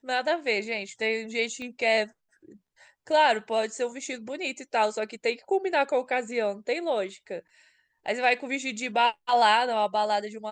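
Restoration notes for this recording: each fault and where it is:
1.62 s: pop -27 dBFS

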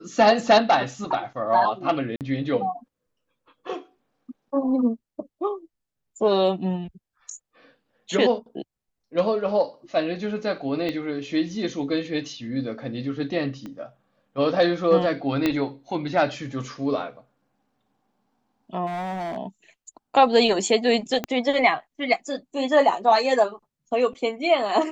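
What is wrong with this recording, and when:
2.16–2.21 s: dropout 48 ms
10.89 s: pop -17 dBFS
13.66 s: pop -24 dBFS
15.46 s: pop -9 dBFS
18.86–19.38 s: clipped -26.5 dBFS
21.24 s: pop -12 dBFS

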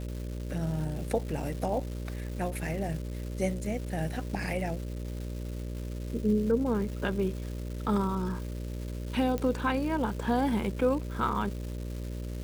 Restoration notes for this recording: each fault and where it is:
buzz 60 Hz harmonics 10 -36 dBFS
crackle 560 per s -39 dBFS
9.38 s: pop -19 dBFS

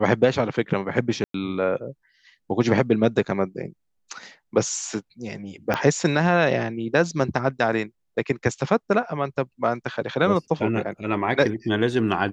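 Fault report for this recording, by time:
1.24–1.34 s: dropout 103 ms
5.74 s: pop -10 dBFS

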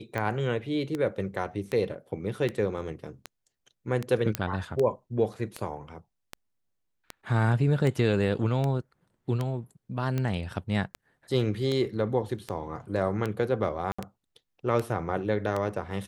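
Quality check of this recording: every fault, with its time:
tick 78 rpm -17 dBFS
4.35 s: pop -10 dBFS
13.92–13.98 s: dropout 65 ms

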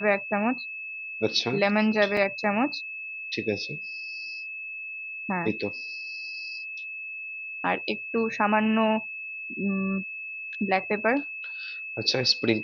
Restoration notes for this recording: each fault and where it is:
whine 2.6 kHz -34 dBFS
2.17 s: dropout 2.7 ms

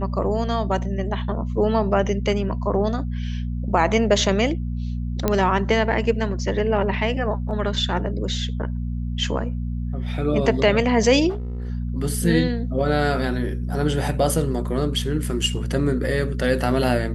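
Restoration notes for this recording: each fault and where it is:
hum 60 Hz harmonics 4 -26 dBFS
5.28 s: pop -6 dBFS
11.29–11.70 s: clipped -25 dBFS

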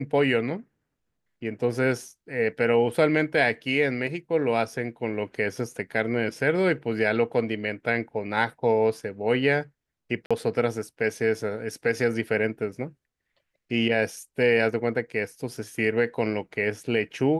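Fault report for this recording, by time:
10.26–10.31 s: dropout 46 ms

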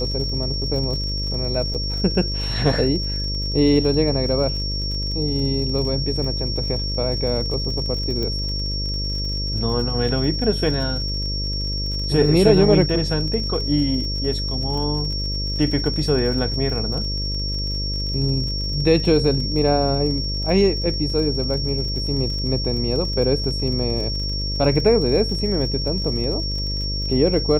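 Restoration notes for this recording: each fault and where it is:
buzz 50 Hz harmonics 12 -26 dBFS
crackle 53 per s -30 dBFS
whine 5.5 kHz -26 dBFS
1.74–1.75 s: dropout 6.8 ms
8.23 s: pop -14 dBFS

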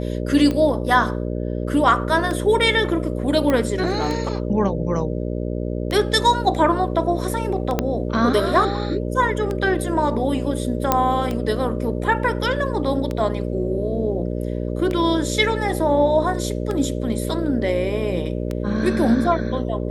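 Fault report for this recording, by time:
buzz 60 Hz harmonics 10 -25 dBFS
tick 33 1/3 rpm -13 dBFS
3.50 s: pop -9 dBFS
7.79 s: pop -6 dBFS
10.92 s: pop -2 dBFS

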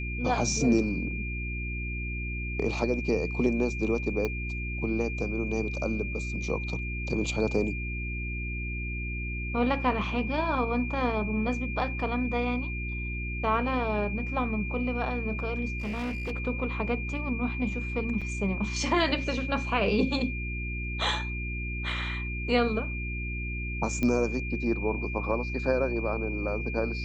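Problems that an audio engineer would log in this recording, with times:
hum 60 Hz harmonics 6 -34 dBFS
whine 2.4 kHz -36 dBFS
4.25 s: pop -17 dBFS
15.78–16.32 s: clipped -29 dBFS
18.21–18.22 s: dropout 5.9 ms
24.03 s: pop -16 dBFS

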